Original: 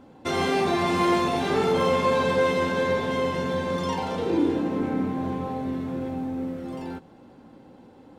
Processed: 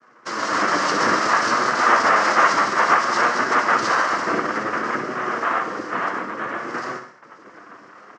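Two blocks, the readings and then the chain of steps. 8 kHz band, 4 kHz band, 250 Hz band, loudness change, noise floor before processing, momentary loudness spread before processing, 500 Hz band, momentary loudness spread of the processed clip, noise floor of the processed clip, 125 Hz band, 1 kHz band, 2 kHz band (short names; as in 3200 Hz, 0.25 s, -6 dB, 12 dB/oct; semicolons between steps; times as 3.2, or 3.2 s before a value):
+11.0 dB, +4.5 dB, -4.0 dB, +5.5 dB, -51 dBFS, 9 LU, -2.0 dB, 11 LU, -48 dBFS, -8.5 dB, +9.5 dB, +12.0 dB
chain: overloaded stage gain 18 dB; reverb removal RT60 0.91 s; compressor, threshold -26 dBFS, peak gain reduction 5.5 dB; comb 5.4 ms, depth 88%; noise vocoder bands 3; feedback echo 62 ms, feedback 51%, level -10.5 dB; gate -55 dBFS, range -11 dB; flange 0.58 Hz, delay 7.9 ms, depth 2.5 ms, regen +63%; AGC gain up to 10.5 dB; speaker cabinet 420–6000 Hz, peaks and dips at 420 Hz -6 dB, 830 Hz -3 dB, 1200 Hz +7 dB, 2400 Hz -6 dB, 3600 Hz -6 dB, 5200 Hz +4 dB; non-linear reverb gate 0.17 s flat, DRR 11 dB; gain +3 dB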